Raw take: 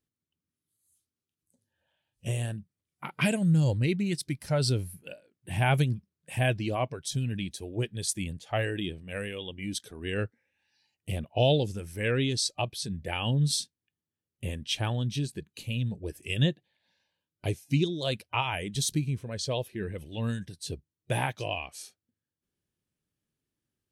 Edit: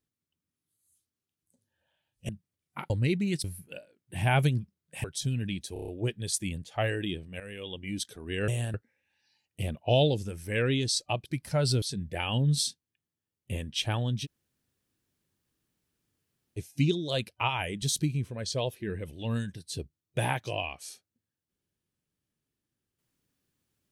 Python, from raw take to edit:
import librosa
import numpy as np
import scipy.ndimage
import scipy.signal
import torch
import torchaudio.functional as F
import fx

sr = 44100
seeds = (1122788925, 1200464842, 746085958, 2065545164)

y = fx.edit(x, sr, fx.move(start_s=2.29, length_s=0.26, to_s=10.23),
    fx.cut(start_s=3.16, length_s=0.53),
    fx.move(start_s=4.23, length_s=0.56, to_s=12.75),
    fx.cut(start_s=6.39, length_s=0.55),
    fx.stutter(start_s=7.63, slice_s=0.03, count=6),
    fx.fade_in_from(start_s=9.15, length_s=0.32, floor_db=-13.5),
    fx.room_tone_fill(start_s=15.18, length_s=2.33, crossfade_s=0.04), tone=tone)